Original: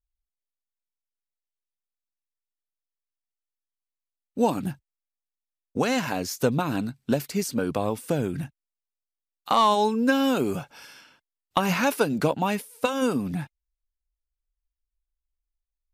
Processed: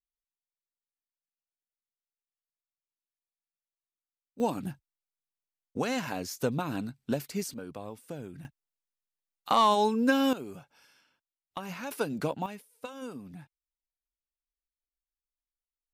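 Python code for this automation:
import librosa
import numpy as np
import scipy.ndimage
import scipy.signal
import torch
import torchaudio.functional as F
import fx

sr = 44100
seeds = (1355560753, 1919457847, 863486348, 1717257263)

y = fx.gain(x, sr, db=fx.steps((0.0, -18.5), (4.4, -6.5), (7.54, -15.0), (8.45, -3.0), (10.33, -15.5), (11.91, -8.0), (12.46, -16.5)))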